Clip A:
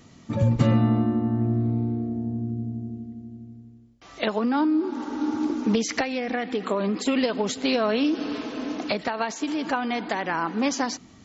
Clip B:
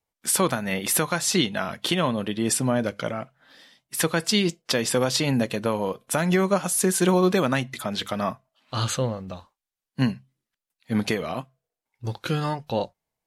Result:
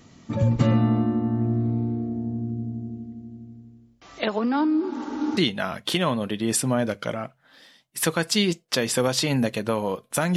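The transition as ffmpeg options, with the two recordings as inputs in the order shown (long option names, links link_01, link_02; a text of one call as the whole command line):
ffmpeg -i cue0.wav -i cue1.wav -filter_complex "[0:a]apad=whole_dur=10.36,atrim=end=10.36,atrim=end=5.372[link_01];[1:a]atrim=start=1.338:end=6.33[link_02];[link_01][link_02]acrossfade=duration=0.004:curve1=hsin:curve2=hsin" out.wav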